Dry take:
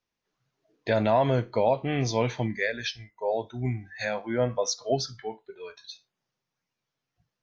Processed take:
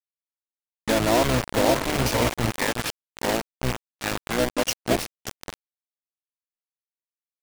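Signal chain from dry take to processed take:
feedback delay with all-pass diffusion 557 ms, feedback 46%, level −7 dB
bit reduction 4 bits
pitch-shifted copies added −12 semitones −4 dB

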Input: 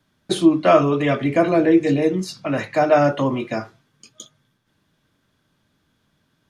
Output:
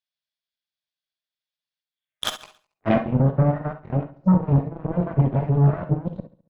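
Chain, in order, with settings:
played backwards from end to start
flat-topped bell 3,800 Hz +13.5 dB 2.4 octaves
leveller curve on the samples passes 5
downward compressor 12 to 1, threshold −6 dBFS, peak gain reduction 5 dB
low-pass filter sweep 4,700 Hz → 160 Hz, 0:01.88–0:03.14
low shelf with overshoot 500 Hz −8 dB, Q 3
harmonic generator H 5 −37 dB, 6 −30 dB, 7 −16 dB, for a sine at −8.5 dBFS
repeating echo 69 ms, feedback 47%, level −17 dB
on a send at −8 dB: convolution reverb, pre-delay 3 ms

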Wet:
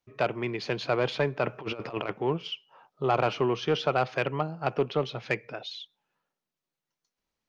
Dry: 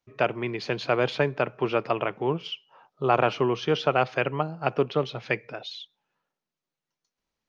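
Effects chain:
soft clipping −13.5 dBFS, distortion −16 dB
0:01.44–0:02.13: compressor whose output falls as the input rises −31 dBFS, ratio −0.5
level −1 dB

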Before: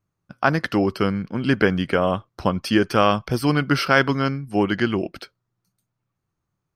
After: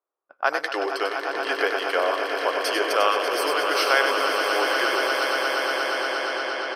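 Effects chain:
high-shelf EQ 5,400 Hz +6.5 dB
echo that builds up and dies away 118 ms, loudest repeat 8, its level −10.5 dB
low-pass that shuts in the quiet parts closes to 1,100 Hz, open at −16.5 dBFS
in parallel at −2.5 dB: brickwall limiter −13 dBFS, peak gain reduction 11.5 dB
on the sum: inverse Chebyshev high-pass filter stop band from 210 Hz, stop band 40 dB
single-tap delay 97 ms −7 dB
level −5.5 dB

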